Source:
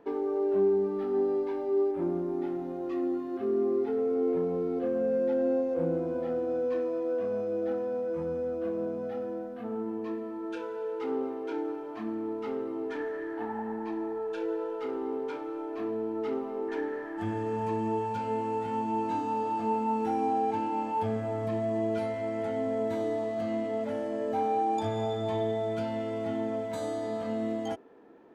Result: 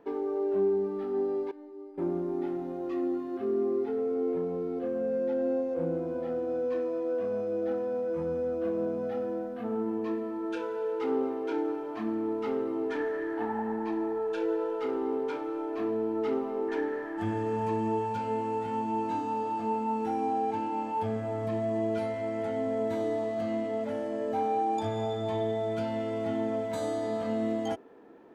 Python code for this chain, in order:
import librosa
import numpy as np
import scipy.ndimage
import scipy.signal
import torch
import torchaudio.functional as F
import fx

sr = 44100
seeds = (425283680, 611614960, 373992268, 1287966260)

y = fx.rider(x, sr, range_db=3, speed_s=2.0)
y = fx.comb_fb(y, sr, f0_hz=300.0, decay_s=0.61, harmonics='all', damping=0.0, mix_pct=90, at=(1.51, 1.98))